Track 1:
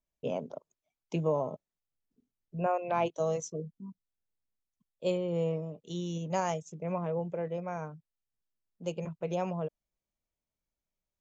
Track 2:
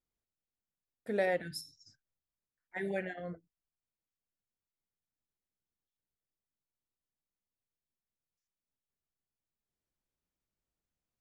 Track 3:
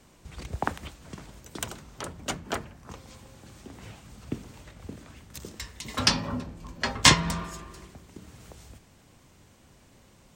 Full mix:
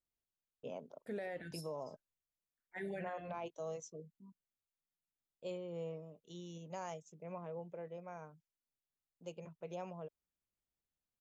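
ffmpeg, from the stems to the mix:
-filter_complex "[0:a]lowshelf=f=180:g=-7,agate=range=0.0224:threshold=0.002:ratio=3:detection=peak,adelay=400,volume=0.282[s0];[1:a]bandreject=f=5500:w=16,volume=0.531[s1];[s0][s1]amix=inputs=2:normalize=0,alimiter=level_in=3.16:limit=0.0631:level=0:latency=1:release=13,volume=0.316"

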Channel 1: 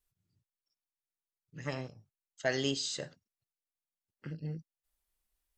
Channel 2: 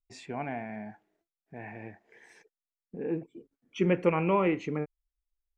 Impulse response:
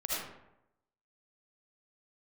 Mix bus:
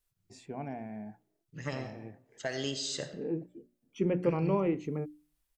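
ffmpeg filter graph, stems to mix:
-filter_complex "[0:a]alimiter=level_in=1.06:limit=0.0631:level=0:latency=1:release=310,volume=0.944,volume=1.12,asplit=2[s0][s1];[s1]volume=0.2[s2];[1:a]equalizer=f=2000:w=0.46:g=-12,bandreject=f=60:t=h:w=6,bandreject=f=120:t=h:w=6,bandreject=f=180:t=h:w=6,bandreject=f=240:t=h:w=6,bandreject=f=300:t=h:w=6,bandreject=f=360:t=h:w=6,adelay=200,volume=1[s3];[2:a]atrim=start_sample=2205[s4];[s2][s4]afir=irnorm=-1:irlink=0[s5];[s0][s3][s5]amix=inputs=3:normalize=0"

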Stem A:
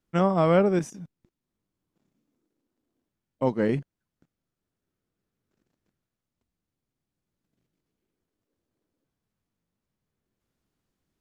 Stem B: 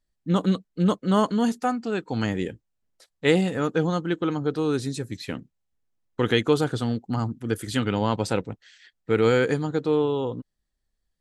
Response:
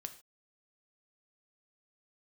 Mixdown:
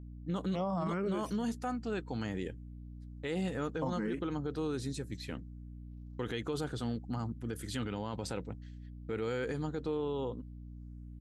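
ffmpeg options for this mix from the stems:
-filter_complex "[0:a]asplit=2[s0][s1];[s1]afreqshift=1.3[s2];[s0][s2]amix=inputs=2:normalize=1,adelay=400,volume=0.75[s3];[1:a]agate=range=0.0224:threshold=0.00708:ratio=3:detection=peak,aeval=exprs='val(0)+0.0141*(sin(2*PI*60*n/s)+sin(2*PI*2*60*n/s)/2+sin(2*PI*3*60*n/s)/3+sin(2*PI*4*60*n/s)/4+sin(2*PI*5*60*n/s)/5)':c=same,volume=0.376[s4];[s3][s4]amix=inputs=2:normalize=0,alimiter=level_in=1.41:limit=0.0631:level=0:latency=1:release=33,volume=0.708"

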